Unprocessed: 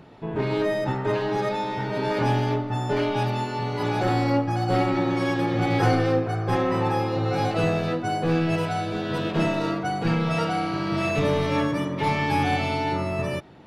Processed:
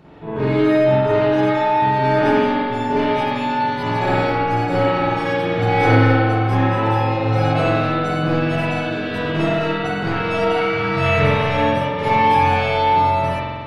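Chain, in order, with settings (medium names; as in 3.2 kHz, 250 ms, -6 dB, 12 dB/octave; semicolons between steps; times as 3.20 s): 10.56–11.23 s: graphic EQ 125/250/2000 Hz +8/-5/+8 dB; spring tank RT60 1.9 s, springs 45 ms, chirp 45 ms, DRR -9.5 dB; trim -2 dB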